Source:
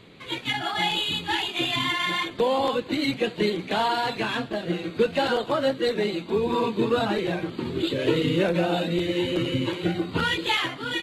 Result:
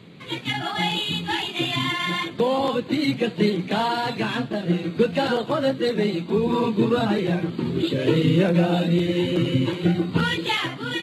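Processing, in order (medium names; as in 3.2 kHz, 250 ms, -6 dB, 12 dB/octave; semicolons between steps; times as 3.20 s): high-pass 86 Hz; peaking EQ 160 Hz +9 dB 1.4 oct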